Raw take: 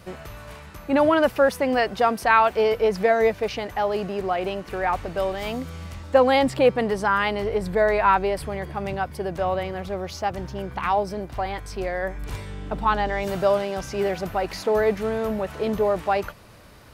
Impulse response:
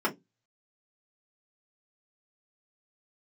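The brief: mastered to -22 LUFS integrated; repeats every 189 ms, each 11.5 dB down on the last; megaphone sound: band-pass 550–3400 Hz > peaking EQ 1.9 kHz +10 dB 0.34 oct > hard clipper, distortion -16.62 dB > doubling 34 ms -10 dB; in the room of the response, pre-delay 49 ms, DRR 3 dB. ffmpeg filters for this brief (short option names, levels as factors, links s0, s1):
-filter_complex "[0:a]aecho=1:1:189|378|567:0.266|0.0718|0.0194,asplit=2[s0][s1];[1:a]atrim=start_sample=2205,adelay=49[s2];[s1][s2]afir=irnorm=-1:irlink=0,volume=0.211[s3];[s0][s3]amix=inputs=2:normalize=0,highpass=550,lowpass=3400,equalizer=f=1900:t=o:w=0.34:g=10,asoftclip=type=hard:threshold=0.282,asplit=2[s4][s5];[s5]adelay=34,volume=0.316[s6];[s4][s6]amix=inputs=2:normalize=0"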